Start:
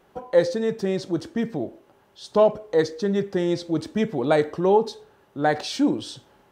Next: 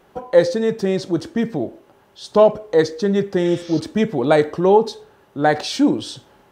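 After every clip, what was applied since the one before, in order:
healed spectral selection 0:03.46–0:03.77, 1,000–6,800 Hz both
level +5 dB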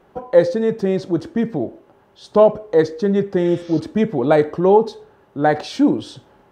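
high-shelf EQ 2,600 Hz −10 dB
level +1 dB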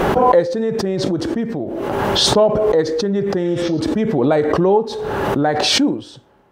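background raised ahead of every attack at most 21 dB per second
level −2.5 dB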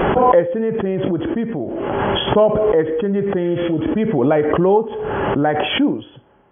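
linear-phase brick-wall low-pass 3,400 Hz

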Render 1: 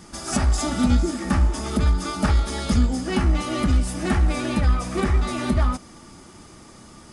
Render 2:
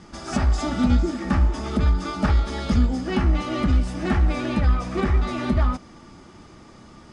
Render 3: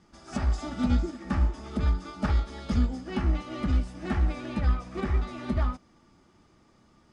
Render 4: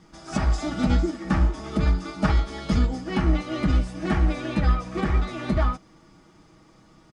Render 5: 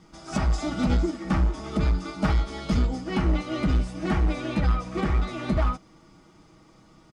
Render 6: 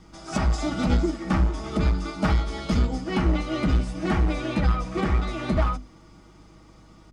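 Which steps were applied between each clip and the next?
high-frequency loss of the air 110 metres
expander for the loud parts 1.5 to 1, over −34 dBFS; level −4.5 dB
comb filter 6.3 ms, depth 47%; level +6 dB
notch filter 1,700 Hz, Q 12; in parallel at −5.5 dB: wave folding −18 dBFS; on the sum: level −4 dB
mains-hum notches 50/100/150/200/250 Hz; mains hum 50 Hz, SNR 30 dB; level +2 dB

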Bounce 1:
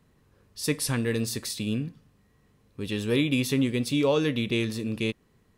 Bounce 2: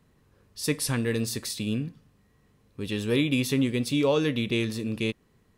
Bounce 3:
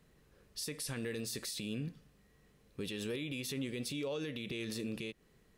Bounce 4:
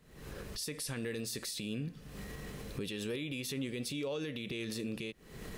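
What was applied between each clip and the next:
no processing that can be heard
graphic EQ with 15 bands 100 Hz −10 dB, 250 Hz −5 dB, 1,000 Hz −6 dB; downward compressor, threshold −32 dBFS, peak gain reduction 11 dB; brickwall limiter −30.5 dBFS, peak gain reduction 8.5 dB
camcorder AGC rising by 73 dB per second; level +1 dB

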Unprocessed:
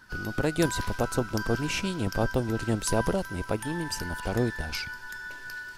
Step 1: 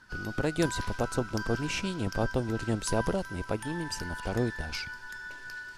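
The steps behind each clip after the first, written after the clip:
low-pass filter 9,800 Hz 12 dB per octave
level −2.5 dB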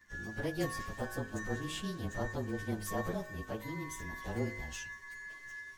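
partials spread apart or drawn together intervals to 108%
hum removal 51.81 Hz, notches 31
level −4.5 dB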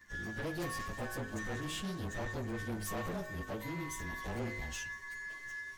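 soft clipping −38 dBFS, distortion −8 dB
level +3.5 dB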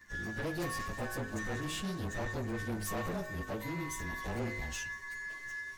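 notch filter 3,200 Hz, Q 21
level +2 dB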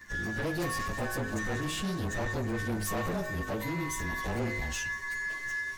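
brickwall limiter −35.5 dBFS, peak gain reduction 4.5 dB
level +7.5 dB

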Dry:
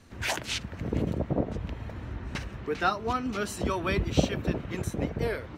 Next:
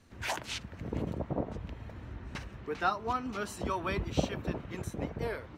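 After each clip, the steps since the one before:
dynamic equaliser 960 Hz, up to +6 dB, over −44 dBFS, Q 1.5
level −6.5 dB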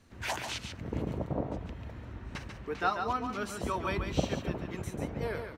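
single-tap delay 141 ms −6.5 dB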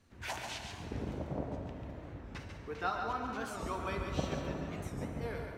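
dense smooth reverb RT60 4.1 s, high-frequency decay 0.5×, DRR 3.5 dB
wow of a warped record 45 rpm, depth 160 cents
level −6 dB

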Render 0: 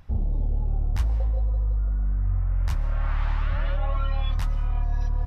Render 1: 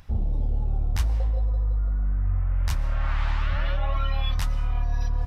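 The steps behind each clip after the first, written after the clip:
high-shelf EQ 2,100 Hz +8.5 dB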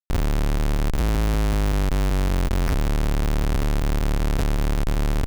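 feedback echo with a low-pass in the loop 231 ms, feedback 31%, level −16 dB
comparator with hysteresis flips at −23 dBFS
regular buffer underruns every 0.19 s, samples 256, zero, from 0:00.58
level +3.5 dB

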